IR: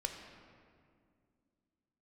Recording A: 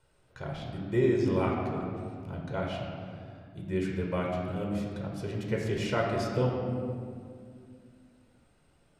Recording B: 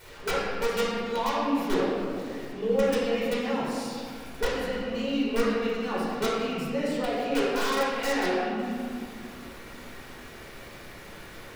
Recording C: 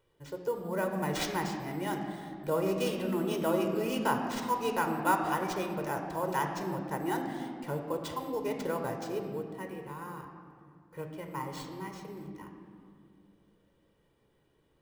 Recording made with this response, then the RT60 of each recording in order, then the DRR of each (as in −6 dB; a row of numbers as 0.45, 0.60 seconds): C; 2.2, 2.2, 2.2 seconds; −1.5, −8.5, 3.0 decibels